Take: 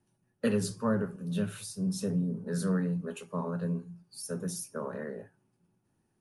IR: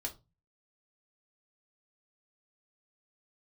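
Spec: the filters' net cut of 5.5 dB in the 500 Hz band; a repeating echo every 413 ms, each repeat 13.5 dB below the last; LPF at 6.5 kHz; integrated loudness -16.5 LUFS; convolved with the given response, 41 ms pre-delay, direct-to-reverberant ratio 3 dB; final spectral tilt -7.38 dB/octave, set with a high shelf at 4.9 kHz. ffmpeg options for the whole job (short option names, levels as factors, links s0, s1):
-filter_complex "[0:a]lowpass=6500,equalizer=f=500:t=o:g=-6.5,highshelf=f=4900:g=-3.5,aecho=1:1:413|826:0.211|0.0444,asplit=2[s0][s1];[1:a]atrim=start_sample=2205,adelay=41[s2];[s1][s2]afir=irnorm=-1:irlink=0,volume=0.708[s3];[s0][s3]amix=inputs=2:normalize=0,volume=6.31"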